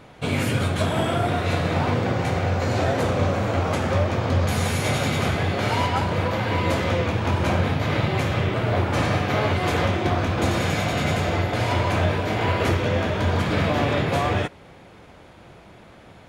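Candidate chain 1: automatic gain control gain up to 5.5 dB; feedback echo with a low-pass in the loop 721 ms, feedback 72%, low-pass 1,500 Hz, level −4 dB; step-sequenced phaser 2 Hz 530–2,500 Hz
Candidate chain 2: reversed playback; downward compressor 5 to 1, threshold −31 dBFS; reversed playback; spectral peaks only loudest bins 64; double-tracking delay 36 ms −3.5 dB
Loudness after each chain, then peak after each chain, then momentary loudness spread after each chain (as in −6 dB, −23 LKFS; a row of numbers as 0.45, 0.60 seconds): −18.5, −32.5 LKFS; −3.5, −19.0 dBFS; 5, 3 LU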